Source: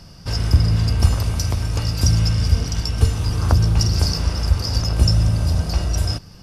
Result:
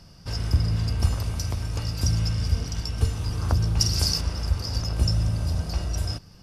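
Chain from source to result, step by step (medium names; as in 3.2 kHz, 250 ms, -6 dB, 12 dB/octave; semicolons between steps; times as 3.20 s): 3.80–4.21 s: treble shelf 2.8 kHz +10 dB; trim -7 dB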